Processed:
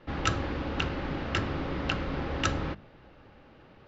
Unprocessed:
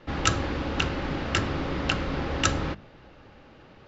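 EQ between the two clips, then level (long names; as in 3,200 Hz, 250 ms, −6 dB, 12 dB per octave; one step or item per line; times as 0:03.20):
high-frequency loss of the air 100 metres
−3.0 dB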